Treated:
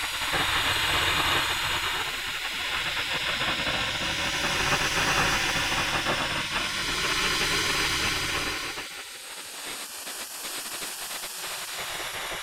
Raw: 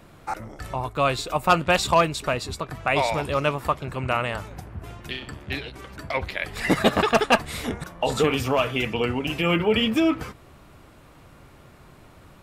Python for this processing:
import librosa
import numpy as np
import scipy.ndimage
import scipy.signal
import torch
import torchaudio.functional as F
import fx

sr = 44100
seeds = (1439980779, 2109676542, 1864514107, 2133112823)

y = fx.paulstretch(x, sr, seeds[0], factor=14.0, window_s=0.25, from_s=6.79)
y = fx.spec_gate(y, sr, threshold_db=-15, keep='weak')
y = fx.hum_notches(y, sr, base_hz=60, count=2)
y = y * librosa.db_to_amplitude(3.5)